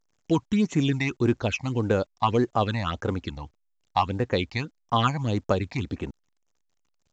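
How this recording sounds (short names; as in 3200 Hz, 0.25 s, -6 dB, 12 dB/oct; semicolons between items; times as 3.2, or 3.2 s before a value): phasing stages 8, 1.7 Hz, lowest notch 400–4700 Hz; a quantiser's noise floor 12-bit, dither none; A-law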